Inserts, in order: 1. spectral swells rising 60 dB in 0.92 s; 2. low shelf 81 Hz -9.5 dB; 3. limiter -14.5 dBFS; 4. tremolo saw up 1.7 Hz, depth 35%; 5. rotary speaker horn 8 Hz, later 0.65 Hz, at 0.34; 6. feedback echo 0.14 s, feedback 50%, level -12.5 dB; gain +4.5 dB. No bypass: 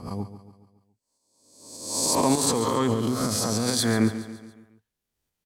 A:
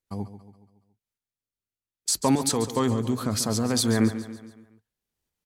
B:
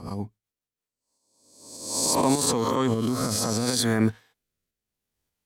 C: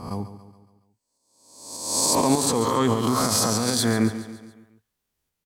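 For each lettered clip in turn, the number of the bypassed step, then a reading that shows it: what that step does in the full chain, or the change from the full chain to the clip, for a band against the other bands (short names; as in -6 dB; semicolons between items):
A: 1, 125 Hz band +3.0 dB; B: 6, echo-to-direct -11.5 dB to none; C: 5, 1 kHz band +2.0 dB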